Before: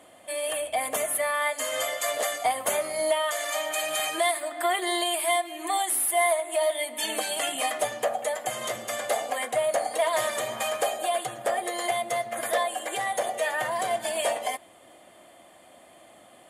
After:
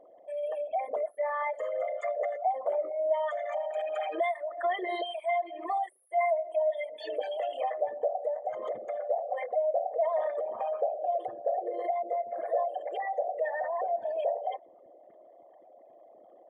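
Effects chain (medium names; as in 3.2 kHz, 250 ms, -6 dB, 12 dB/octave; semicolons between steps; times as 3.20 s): resonances exaggerated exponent 3; tape spacing loss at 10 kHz 42 dB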